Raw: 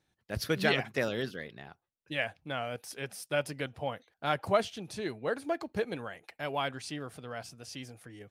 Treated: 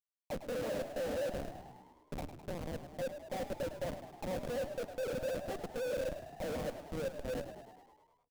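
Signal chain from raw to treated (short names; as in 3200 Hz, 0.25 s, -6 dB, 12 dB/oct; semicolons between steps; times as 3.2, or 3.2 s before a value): gliding pitch shift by +7.5 st ending unshifted; LPF 2700 Hz 6 dB/oct; auto-wah 510–1200 Hz, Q 12, down, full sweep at -38.5 dBFS; de-hum 124.7 Hz, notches 18; Schmitt trigger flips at -54 dBFS; small resonant body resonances 230/530 Hz, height 9 dB, ringing for 25 ms; frequency-shifting echo 0.104 s, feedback 63%, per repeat +59 Hz, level -11 dB; reverb RT60 0.95 s, pre-delay 7 ms, DRR 17 dB; gain +7 dB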